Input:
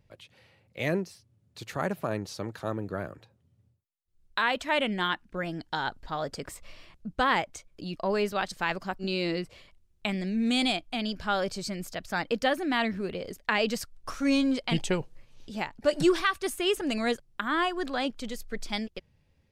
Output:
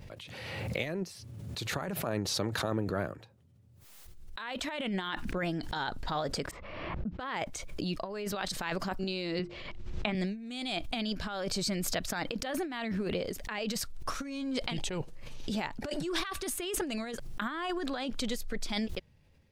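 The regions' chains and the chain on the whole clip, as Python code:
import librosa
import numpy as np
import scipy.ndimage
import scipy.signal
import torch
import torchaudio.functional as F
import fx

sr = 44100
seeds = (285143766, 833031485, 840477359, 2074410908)

y = fx.chain(x, sr, fx.highpass(hz=86.0, slope=6),
    fx.env_lowpass(base_hz=1300.0, full_db=-24.5),
    fx.peak_eq(hz=9100.0, db=-13.5, octaves=0.45), at=(6.51, 7.37))
y = fx.chain(y, sr, fx.air_absorb(metres=160.0),
    fx.hum_notches(base_hz=50, count=8),
    fx.band_squash(depth_pct=40), at=(9.39, 10.15))
y = fx.over_compress(y, sr, threshold_db=-32.0, ratio=-0.5)
y = fx.dynamic_eq(y, sr, hz=3800.0, q=5.4, threshold_db=-53.0, ratio=4.0, max_db=4)
y = fx.pre_swell(y, sr, db_per_s=29.0)
y = y * 10.0 ** (-2.5 / 20.0)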